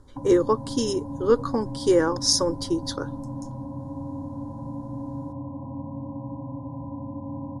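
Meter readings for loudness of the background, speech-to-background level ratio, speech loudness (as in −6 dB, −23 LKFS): −35.0 LKFS, 11.5 dB, −23.5 LKFS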